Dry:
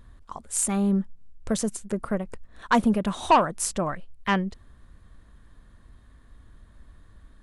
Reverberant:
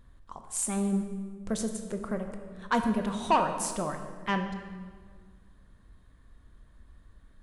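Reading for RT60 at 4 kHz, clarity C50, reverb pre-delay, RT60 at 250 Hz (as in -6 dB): 1.2 s, 7.5 dB, 12 ms, 2.1 s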